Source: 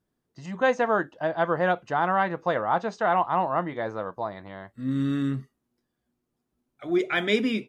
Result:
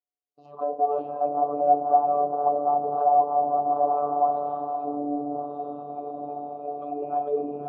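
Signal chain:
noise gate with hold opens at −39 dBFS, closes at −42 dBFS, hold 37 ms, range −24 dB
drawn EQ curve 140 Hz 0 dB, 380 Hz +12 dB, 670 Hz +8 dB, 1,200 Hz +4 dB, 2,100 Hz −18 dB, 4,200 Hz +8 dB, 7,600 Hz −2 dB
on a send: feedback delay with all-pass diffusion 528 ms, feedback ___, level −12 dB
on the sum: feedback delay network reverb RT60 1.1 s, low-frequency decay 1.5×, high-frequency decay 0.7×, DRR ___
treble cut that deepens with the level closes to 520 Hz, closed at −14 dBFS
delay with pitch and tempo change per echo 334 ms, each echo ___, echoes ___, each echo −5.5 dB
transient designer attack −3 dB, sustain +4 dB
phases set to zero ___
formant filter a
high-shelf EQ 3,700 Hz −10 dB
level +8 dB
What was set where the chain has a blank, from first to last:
58%, 15 dB, −7 semitones, 2, 145 Hz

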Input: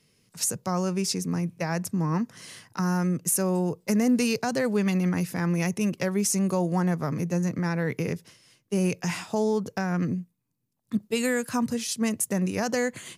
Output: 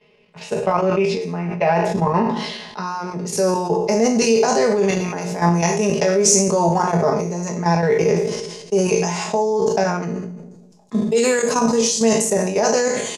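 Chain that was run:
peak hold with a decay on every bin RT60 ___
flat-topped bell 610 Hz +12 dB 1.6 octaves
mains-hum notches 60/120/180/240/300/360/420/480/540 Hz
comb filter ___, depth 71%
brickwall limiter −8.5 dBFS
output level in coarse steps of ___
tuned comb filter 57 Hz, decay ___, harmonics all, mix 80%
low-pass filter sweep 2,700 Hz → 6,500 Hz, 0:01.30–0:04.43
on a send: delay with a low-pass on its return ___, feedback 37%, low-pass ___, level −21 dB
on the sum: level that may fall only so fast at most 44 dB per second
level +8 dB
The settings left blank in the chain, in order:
0.58 s, 4.8 ms, 10 dB, 0.2 s, 171 ms, 510 Hz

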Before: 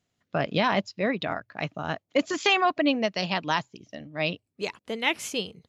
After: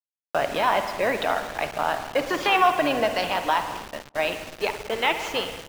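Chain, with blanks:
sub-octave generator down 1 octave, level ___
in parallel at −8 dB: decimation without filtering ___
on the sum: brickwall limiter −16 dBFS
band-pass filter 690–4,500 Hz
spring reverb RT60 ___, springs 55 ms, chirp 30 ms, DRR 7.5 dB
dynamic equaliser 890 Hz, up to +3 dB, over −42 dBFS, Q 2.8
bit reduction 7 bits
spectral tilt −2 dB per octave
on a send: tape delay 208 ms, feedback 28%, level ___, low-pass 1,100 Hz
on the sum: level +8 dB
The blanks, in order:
−4 dB, 20×, 1.9 s, −19 dB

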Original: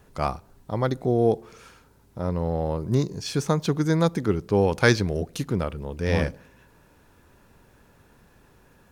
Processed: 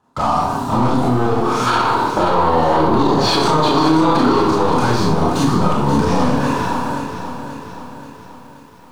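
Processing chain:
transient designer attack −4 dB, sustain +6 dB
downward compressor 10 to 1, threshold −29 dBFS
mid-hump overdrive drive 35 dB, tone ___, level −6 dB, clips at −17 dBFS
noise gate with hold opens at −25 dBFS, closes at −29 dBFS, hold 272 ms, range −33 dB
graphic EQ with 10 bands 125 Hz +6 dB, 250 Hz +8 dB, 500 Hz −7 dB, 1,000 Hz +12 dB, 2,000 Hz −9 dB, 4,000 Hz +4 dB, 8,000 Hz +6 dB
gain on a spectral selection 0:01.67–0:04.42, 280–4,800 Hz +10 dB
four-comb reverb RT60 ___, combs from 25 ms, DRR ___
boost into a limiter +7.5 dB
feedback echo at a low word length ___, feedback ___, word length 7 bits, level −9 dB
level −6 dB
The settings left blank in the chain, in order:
1,300 Hz, 0.57 s, −4 dB, 530 ms, 55%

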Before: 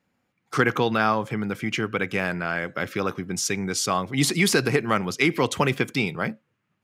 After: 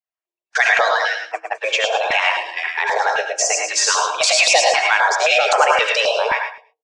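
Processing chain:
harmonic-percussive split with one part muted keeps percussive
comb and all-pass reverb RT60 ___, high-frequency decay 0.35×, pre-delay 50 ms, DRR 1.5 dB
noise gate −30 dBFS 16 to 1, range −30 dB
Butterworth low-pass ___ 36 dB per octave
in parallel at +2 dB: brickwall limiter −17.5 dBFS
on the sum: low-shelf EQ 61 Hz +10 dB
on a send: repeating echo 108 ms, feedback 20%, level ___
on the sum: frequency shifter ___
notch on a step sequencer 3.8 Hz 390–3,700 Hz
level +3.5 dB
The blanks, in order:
0.45 s, 7,400 Hz, −5.5 dB, +320 Hz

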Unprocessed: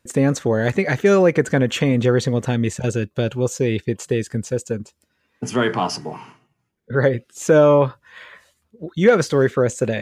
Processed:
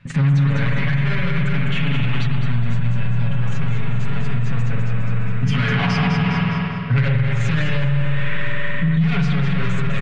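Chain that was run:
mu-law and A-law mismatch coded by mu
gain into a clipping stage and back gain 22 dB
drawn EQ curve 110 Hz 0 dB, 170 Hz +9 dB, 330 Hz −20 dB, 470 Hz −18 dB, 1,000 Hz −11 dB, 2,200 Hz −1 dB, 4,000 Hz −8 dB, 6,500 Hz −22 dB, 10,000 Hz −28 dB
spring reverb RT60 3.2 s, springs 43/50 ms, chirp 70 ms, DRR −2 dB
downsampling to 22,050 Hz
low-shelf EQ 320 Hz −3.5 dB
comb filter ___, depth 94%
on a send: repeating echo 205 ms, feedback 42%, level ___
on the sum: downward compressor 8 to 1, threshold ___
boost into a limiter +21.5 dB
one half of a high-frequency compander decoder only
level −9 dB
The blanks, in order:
7.2 ms, −7 dB, −22 dBFS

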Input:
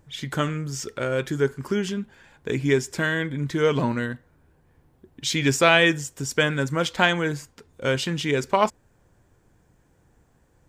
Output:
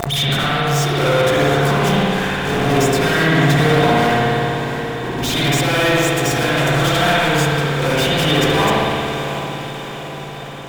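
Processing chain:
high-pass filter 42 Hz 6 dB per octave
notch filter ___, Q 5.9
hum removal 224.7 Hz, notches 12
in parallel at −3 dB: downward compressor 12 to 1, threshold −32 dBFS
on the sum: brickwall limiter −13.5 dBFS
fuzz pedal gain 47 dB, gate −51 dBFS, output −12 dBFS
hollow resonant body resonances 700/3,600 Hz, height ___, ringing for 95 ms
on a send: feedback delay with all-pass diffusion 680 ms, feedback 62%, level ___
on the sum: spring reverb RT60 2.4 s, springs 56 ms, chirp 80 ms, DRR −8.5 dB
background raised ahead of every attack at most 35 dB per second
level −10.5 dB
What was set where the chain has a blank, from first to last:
630 Hz, 13 dB, −10.5 dB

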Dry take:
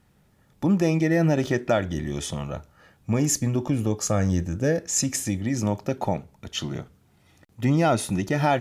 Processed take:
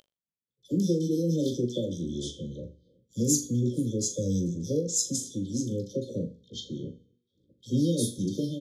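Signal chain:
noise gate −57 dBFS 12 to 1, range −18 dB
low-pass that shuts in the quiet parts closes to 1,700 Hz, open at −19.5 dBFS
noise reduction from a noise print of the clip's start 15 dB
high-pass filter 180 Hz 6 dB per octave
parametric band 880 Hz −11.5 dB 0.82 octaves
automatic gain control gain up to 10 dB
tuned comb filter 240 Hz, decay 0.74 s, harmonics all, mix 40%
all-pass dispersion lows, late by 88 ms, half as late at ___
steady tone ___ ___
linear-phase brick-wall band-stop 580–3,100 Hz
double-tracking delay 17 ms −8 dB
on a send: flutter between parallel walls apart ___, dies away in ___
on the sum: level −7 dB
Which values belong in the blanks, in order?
1,000 Hz, 2,300 Hz, −24 dBFS, 7 metres, 0.27 s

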